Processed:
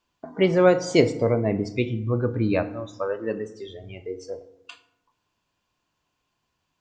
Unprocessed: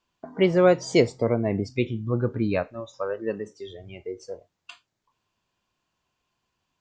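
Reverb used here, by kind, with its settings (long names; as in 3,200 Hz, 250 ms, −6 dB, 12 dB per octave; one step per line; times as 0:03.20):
feedback delay network reverb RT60 0.87 s, low-frequency decay 1.45×, high-frequency decay 0.6×, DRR 10.5 dB
level +1 dB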